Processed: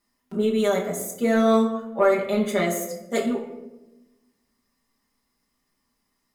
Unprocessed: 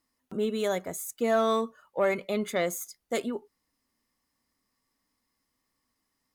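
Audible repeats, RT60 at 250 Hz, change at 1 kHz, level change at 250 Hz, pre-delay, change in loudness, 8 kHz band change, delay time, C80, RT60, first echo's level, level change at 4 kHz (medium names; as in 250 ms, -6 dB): no echo, 1.5 s, +4.5 dB, +10.0 dB, 5 ms, +6.5 dB, +4.0 dB, no echo, 10.0 dB, 1.0 s, no echo, +3.5 dB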